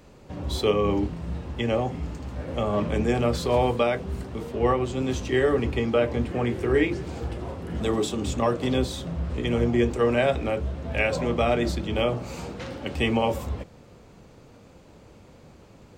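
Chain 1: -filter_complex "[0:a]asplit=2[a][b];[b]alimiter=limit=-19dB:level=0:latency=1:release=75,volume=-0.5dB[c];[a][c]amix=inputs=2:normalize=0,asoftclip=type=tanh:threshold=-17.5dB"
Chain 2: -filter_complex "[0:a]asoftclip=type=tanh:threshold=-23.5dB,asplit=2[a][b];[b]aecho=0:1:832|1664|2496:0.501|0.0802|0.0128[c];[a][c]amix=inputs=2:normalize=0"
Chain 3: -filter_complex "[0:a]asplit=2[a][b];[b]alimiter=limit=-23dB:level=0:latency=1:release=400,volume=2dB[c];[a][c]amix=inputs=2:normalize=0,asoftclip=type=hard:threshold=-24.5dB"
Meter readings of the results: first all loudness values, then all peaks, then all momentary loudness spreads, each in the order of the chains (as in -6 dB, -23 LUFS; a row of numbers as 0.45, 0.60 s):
-25.0, -29.0, -28.0 LUFS; -17.5, -19.5, -24.5 dBFS; 7, 8, 17 LU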